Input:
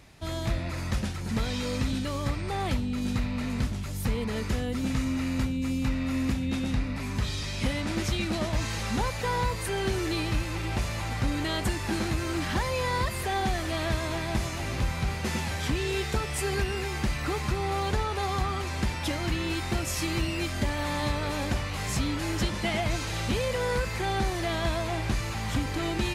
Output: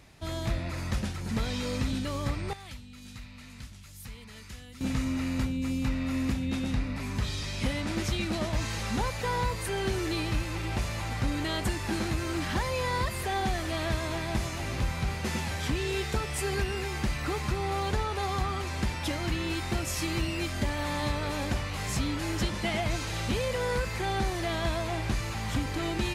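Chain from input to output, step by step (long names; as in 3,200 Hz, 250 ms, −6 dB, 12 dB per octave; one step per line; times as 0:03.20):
0:02.53–0:04.81: guitar amp tone stack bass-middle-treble 5-5-5
level −1.5 dB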